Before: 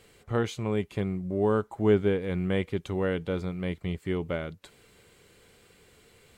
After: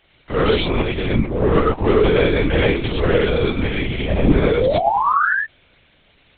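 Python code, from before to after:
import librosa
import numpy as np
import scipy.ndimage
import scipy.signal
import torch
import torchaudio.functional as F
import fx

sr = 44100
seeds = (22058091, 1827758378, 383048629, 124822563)

y = scipy.signal.sosfilt(scipy.signal.butter(2, 130.0, 'highpass', fs=sr, output='sos'), x)
y = fx.high_shelf(y, sr, hz=2500.0, db=10.5)
y = fx.hum_notches(y, sr, base_hz=50, count=9)
y = fx.leveller(y, sr, passes=3)
y = fx.ring_mod(y, sr, carrier_hz=fx.line((3.99, 390.0), (4.39, 120.0)), at=(3.99, 4.39), fade=0.02)
y = fx.spec_paint(y, sr, seeds[0], shape='rise', start_s=4.09, length_s=1.24, low_hz=220.0, high_hz=1800.0, level_db=-20.0)
y = fx.rev_gated(y, sr, seeds[1], gate_ms=140, shape='rising', drr_db=-3.0)
y = fx.lpc_vocoder(y, sr, seeds[2], excitation='whisper', order=10)
y = y * librosa.db_to_amplitude(-1.0)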